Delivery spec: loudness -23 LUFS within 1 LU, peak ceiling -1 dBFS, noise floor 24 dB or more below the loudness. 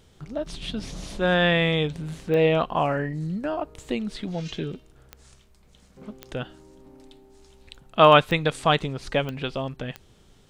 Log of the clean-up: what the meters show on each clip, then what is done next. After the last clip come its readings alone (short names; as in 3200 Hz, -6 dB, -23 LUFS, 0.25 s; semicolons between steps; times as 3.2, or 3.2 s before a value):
clicks 6; loudness -24.0 LUFS; peak -2.5 dBFS; loudness target -23.0 LUFS
-> de-click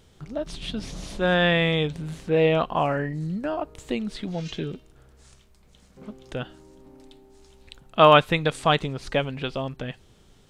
clicks 0; loudness -24.0 LUFS; peak -2.5 dBFS; loudness target -23.0 LUFS
-> gain +1 dB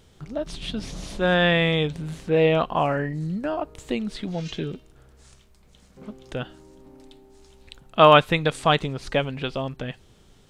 loudness -23.0 LUFS; peak -1.5 dBFS; noise floor -55 dBFS